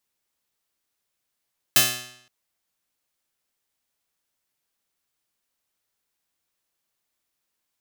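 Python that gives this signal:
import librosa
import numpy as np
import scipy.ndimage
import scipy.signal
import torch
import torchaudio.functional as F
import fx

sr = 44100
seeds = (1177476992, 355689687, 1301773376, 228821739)

y = fx.pluck(sr, length_s=0.52, note=47, decay_s=0.72, pick=0.26, brightness='bright')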